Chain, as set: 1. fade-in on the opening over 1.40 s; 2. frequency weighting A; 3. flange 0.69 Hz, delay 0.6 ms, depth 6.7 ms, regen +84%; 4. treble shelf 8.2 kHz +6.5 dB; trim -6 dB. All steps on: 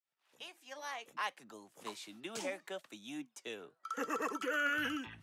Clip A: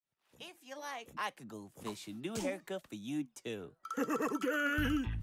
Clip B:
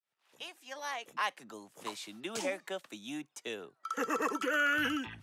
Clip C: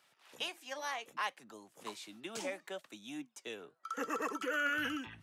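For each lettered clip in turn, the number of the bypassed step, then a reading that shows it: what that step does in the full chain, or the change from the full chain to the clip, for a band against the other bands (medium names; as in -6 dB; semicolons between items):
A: 2, 125 Hz band +17.0 dB; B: 3, loudness change +4.5 LU; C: 1, momentary loudness spread change -2 LU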